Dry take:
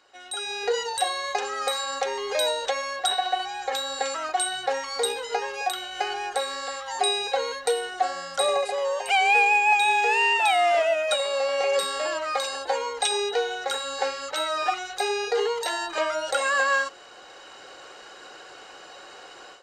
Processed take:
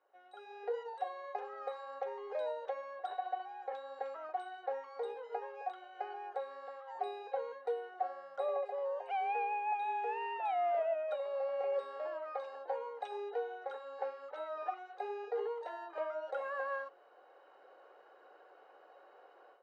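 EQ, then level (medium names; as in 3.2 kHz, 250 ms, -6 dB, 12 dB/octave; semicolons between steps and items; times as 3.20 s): ladder band-pass 660 Hz, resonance 25%; -1.5 dB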